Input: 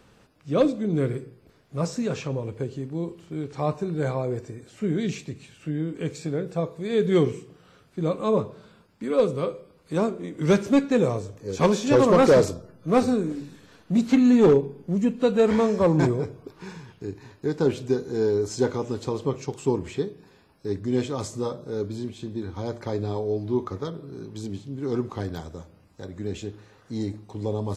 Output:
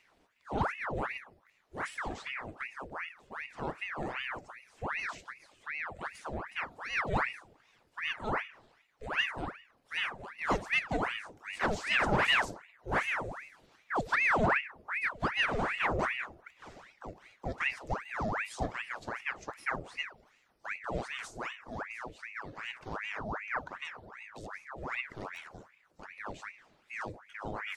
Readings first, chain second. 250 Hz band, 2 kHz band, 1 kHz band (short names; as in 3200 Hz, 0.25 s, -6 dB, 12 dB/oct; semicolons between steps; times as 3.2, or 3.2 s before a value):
-19.0 dB, +7.0 dB, -2.5 dB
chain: bin magnitudes rounded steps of 15 dB; ring modulator with a swept carrier 1300 Hz, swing 85%, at 2.6 Hz; gain -8 dB